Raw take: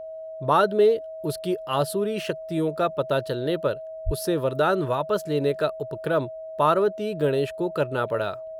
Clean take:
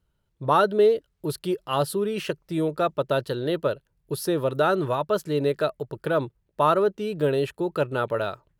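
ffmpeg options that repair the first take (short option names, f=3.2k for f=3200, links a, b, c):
-filter_complex "[0:a]bandreject=f=640:w=30,asplit=3[a][b][c];[a]afade=t=out:st=4.05:d=0.02[d];[b]highpass=f=140:w=0.5412,highpass=f=140:w=1.3066,afade=t=in:st=4.05:d=0.02,afade=t=out:st=4.17:d=0.02[e];[c]afade=t=in:st=4.17:d=0.02[f];[d][e][f]amix=inputs=3:normalize=0"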